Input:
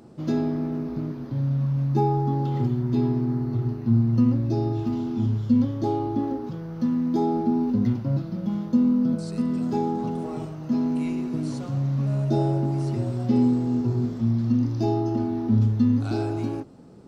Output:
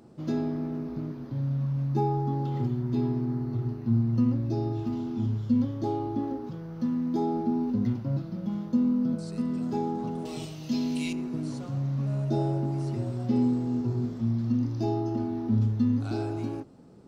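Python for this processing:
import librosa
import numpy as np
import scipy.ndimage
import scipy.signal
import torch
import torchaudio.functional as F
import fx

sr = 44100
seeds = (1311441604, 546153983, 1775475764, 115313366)

y = fx.high_shelf_res(x, sr, hz=2100.0, db=13.5, q=1.5, at=(10.25, 11.13))
y = F.gain(torch.from_numpy(y), -4.5).numpy()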